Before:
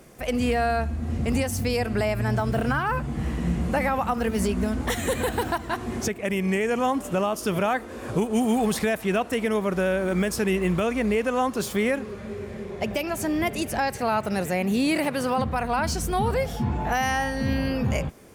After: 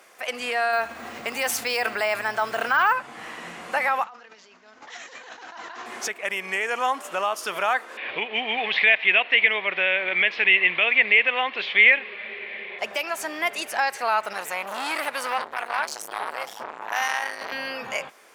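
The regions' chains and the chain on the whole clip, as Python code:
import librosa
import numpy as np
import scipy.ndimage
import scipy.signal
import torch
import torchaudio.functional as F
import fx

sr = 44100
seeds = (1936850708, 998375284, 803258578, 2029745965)

y = fx.chain(x, sr, fx.resample_bad(factor=2, down='none', up='hold'),
    fx.env_flatten(amount_pct=100), at=(0.73, 2.93))
y = fx.chain(y, sr, fx.over_compress(threshold_db=-35.0, ratio=-1.0),
    fx.comb_fb(f0_hz=86.0, decay_s=1.8, harmonics='all', damping=0.0, mix_pct=50),
    fx.resample_bad(factor=3, down='none', up='filtered'), at=(4.04, 5.86))
y = fx.chain(y, sr, fx.steep_lowpass(hz=3500.0, slope=36),
    fx.high_shelf_res(hz=1700.0, db=7.5, q=3.0), at=(7.97, 12.79))
y = fx.chain(y, sr, fx.high_shelf(hz=6900.0, db=7.0),
    fx.transformer_sat(knee_hz=1100.0), at=(14.33, 17.52))
y = scipy.signal.sosfilt(scipy.signal.butter(2, 980.0, 'highpass', fs=sr, output='sos'), y)
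y = fx.high_shelf(y, sr, hz=5600.0, db=-10.0)
y = F.gain(torch.from_numpy(y), 6.5).numpy()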